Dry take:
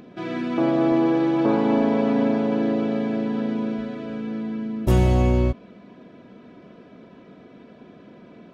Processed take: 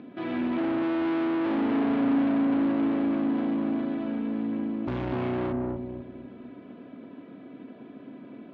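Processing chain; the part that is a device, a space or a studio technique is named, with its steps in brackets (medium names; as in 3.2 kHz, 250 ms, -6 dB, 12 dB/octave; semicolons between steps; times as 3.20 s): analogue delay pedal into a guitar amplifier (bucket-brigade echo 248 ms, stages 1024, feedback 32%, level -3.5 dB; valve stage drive 27 dB, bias 0.55; cabinet simulation 110–3600 Hz, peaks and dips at 170 Hz -5 dB, 270 Hz +9 dB, 480 Hz -3 dB)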